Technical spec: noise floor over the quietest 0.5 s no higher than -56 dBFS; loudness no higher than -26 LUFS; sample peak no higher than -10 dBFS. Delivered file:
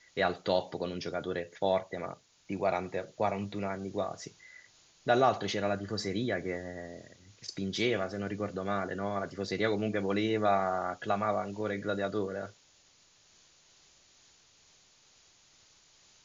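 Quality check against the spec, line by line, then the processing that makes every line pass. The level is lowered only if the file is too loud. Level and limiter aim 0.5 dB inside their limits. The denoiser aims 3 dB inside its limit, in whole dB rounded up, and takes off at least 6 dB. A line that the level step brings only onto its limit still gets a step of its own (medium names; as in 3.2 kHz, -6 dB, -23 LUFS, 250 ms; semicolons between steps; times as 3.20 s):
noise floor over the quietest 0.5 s -64 dBFS: pass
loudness -32.5 LUFS: pass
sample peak -14.0 dBFS: pass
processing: none needed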